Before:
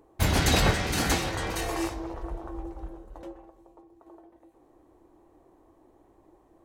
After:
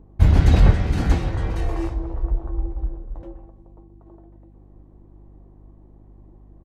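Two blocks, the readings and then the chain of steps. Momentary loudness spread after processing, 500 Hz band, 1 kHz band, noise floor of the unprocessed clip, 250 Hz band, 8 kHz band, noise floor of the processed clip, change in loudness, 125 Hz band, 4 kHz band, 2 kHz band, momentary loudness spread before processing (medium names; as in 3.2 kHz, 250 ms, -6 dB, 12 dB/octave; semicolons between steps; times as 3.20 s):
17 LU, +0.5 dB, -2.0 dB, -62 dBFS, +4.5 dB, -13.5 dB, -50 dBFS, +6.0 dB, +11.0 dB, -8.5 dB, -5.0 dB, 22 LU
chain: RIAA curve playback; hum 50 Hz, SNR 27 dB; resampled via 32 kHz; trim -2.5 dB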